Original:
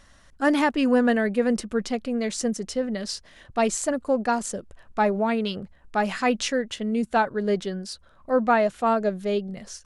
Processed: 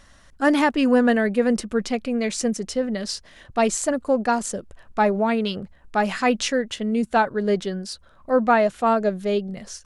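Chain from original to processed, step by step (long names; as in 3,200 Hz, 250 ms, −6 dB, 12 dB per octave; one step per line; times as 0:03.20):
0:01.87–0:02.59: parametric band 2,400 Hz +6.5 dB 0.22 octaves
level +2.5 dB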